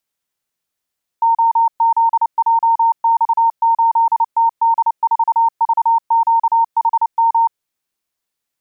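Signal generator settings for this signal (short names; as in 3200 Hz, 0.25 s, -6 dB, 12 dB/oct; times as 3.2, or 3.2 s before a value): Morse "OZJX8TD4VQHM" 29 wpm 917 Hz -9.5 dBFS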